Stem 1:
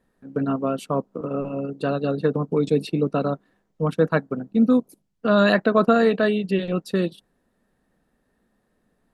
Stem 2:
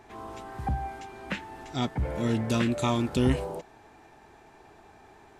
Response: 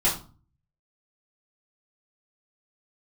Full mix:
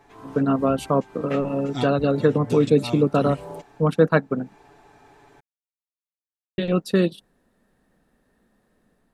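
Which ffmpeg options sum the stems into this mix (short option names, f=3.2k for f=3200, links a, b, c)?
-filter_complex "[0:a]volume=-0.5dB,asplit=3[a][b][c];[a]atrim=end=4.54,asetpts=PTS-STARTPTS,afade=t=out:st=4.536:d=0.004:c=hsin[d];[b]atrim=start=4.54:end=6.58,asetpts=PTS-STARTPTS,volume=0[e];[c]atrim=start=6.58,asetpts=PTS-STARTPTS,afade=t=in:d=0.004:c=hsin[f];[d][e][f]concat=n=3:v=0:a=1,asplit=2[g][h];[1:a]aecho=1:1:7:0.62,volume=-4dB[i];[h]apad=whole_len=238363[j];[i][j]sidechaincompress=threshold=-27dB:ratio=10:attack=8.8:release=323[k];[g][k]amix=inputs=2:normalize=0,dynaudnorm=f=120:g=5:m=4dB"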